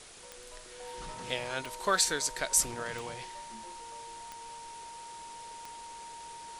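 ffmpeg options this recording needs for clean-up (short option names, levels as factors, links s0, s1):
-af "adeclick=t=4,bandreject=f=930:w=30,afwtdn=0.0035"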